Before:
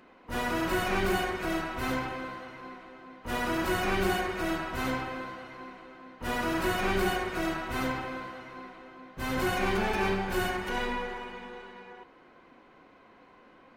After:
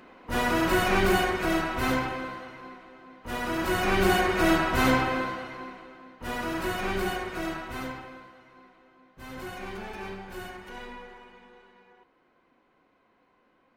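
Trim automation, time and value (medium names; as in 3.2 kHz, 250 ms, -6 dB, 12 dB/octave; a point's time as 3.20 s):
1.88 s +5 dB
2.83 s -1 dB
3.40 s -1 dB
4.47 s +9 dB
5.18 s +9 dB
6.19 s -1.5 dB
7.57 s -1.5 dB
8.32 s -10 dB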